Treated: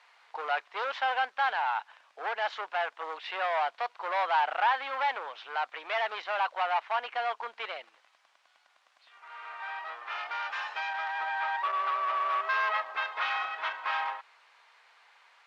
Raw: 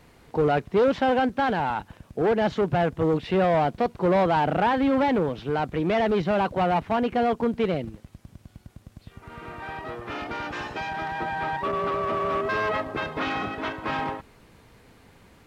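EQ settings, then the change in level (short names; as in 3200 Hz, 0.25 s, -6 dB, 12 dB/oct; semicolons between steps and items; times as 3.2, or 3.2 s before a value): HPF 850 Hz 24 dB/oct; LPF 4500 Hz 12 dB/oct; 0.0 dB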